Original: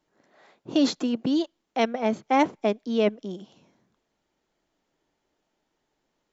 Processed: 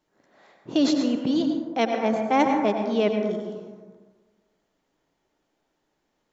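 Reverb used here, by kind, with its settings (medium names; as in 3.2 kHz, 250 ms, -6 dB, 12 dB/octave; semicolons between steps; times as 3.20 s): plate-style reverb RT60 1.5 s, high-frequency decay 0.3×, pre-delay 80 ms, DRR 3 dB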